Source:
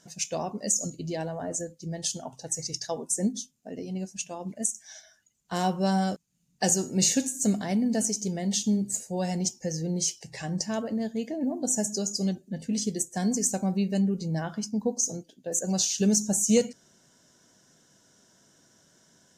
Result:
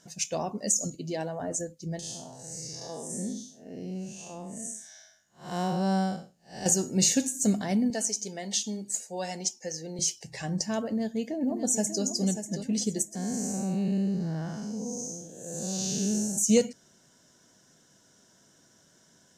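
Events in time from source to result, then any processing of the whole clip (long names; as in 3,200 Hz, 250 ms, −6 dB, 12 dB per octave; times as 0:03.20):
0:00.95–0:01.40: high-pass filter 160 Hz
0:01.99–0:06.66: spectrum smeared in time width 191 ms
0:07.90–0:09.99: meter weighting curve A
0:10.89–0:12.04: delay throw 590 ms, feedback 30%, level −9 dB
0:13.15–0:16.38: spectrum smeared in time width 280 ms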